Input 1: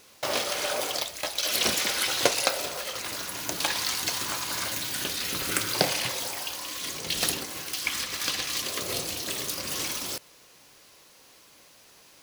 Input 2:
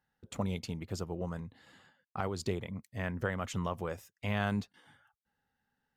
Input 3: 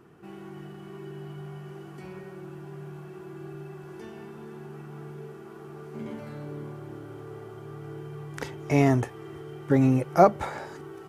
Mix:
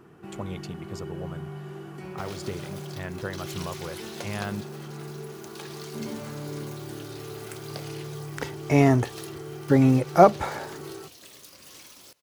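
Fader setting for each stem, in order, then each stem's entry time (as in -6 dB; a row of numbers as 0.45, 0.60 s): -16.5, -0.5, +2.5 dB; 1.95, 0.00, 0.00 s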